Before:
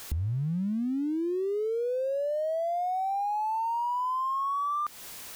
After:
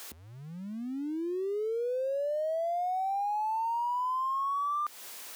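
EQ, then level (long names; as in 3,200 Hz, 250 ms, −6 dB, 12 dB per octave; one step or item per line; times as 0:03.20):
high-pass filter 320 Hz 12 dB per octave
−1.5 dB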